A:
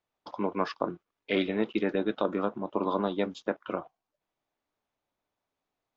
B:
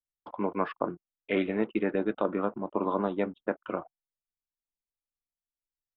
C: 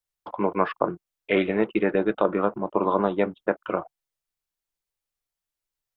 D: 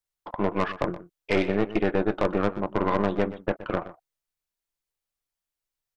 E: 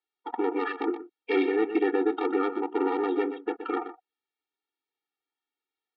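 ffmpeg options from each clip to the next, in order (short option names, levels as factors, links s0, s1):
-af "lowpass=f=2700:w=0.5412,lowpass=f=2700:w=1.3066,anlmdn=0.00631"
-af "equalizer=f=250:t=o:w=0.26:g=-12.5,volume=2.24"
-filter_complex "[0:a]acontrast=79,aeval=exprs='(tanh(3.98*val(0)+0.75)-tanh(0.75))/3.98':c=same,asplit=2[s0][s1];[s1]adelay=122.4,volume=0.178,highshelf=f=4000:g=-2.76[s2];[s0][s2]amix=inputs=2:normalize=0,volume=0.668"
-af "alimiter=limit=0.141:level=0:latency=1:release=54,lowpass=f=3700:w=0.5412,lowpass=f=3700:w=1.3066,afftfilt=real='re*eq(mod(floor(b*sr/1024/240),2),1)':imag='im*eq(mod(floor(b*sr/1024/240),2),1)':win_size=1024:overlap=0.75,volume=2"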